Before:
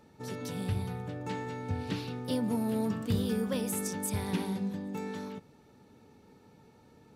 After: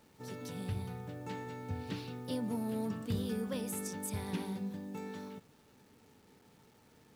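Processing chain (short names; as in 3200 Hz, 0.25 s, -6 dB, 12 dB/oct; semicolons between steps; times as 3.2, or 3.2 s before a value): bit-crush 10-bit; gain -5.5 dB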